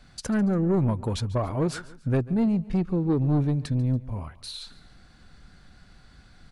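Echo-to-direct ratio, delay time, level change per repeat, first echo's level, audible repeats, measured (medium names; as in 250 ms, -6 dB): -18.5 dB, 142 ms, -7.0 dB, -19.5 dB, 2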